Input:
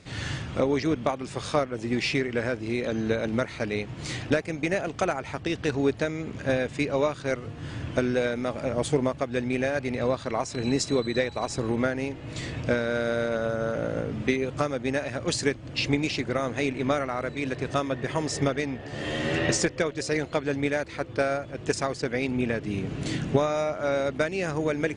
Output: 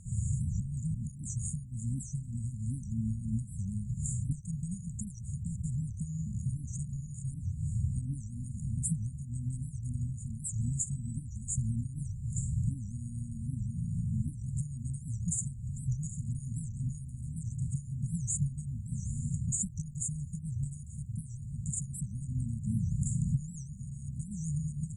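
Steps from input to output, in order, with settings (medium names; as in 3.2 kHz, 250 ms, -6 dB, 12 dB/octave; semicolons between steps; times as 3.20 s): peaking EQ 350 Hz -10.5 dB 2.3 oct; compression, threshold -31 dBFS, peak gain reduction 8 dB; brick-wall FIR band-stop 230–6700 Hz; warped record 78 rpm, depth 250 cents; trim +7.5 dB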